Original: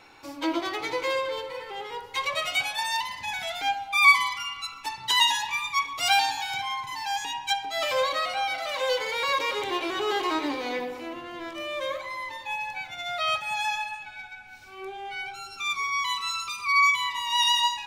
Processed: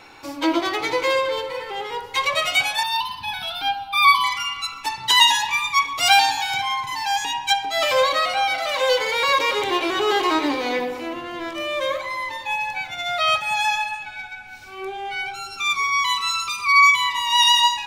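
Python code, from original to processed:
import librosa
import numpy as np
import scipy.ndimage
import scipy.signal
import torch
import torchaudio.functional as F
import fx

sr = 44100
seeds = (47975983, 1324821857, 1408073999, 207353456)

y = fx.fixed_phaser(x, sr, hz=2000.0, stages=6, at=(2.83, 4.24))
y = F.gain(torch.from_numpy(y), 7.0).numpy()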